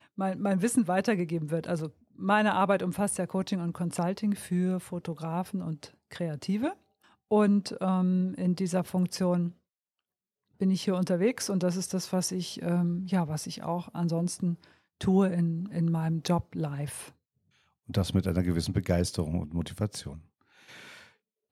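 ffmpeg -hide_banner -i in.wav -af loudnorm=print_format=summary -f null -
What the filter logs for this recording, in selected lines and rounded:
Input Integrated:    -29.6 LUFS
Input True Peak:     -11.9 dBTP
Input LRA:             4.8 LU
Input Threshold:     -40.4 LUFS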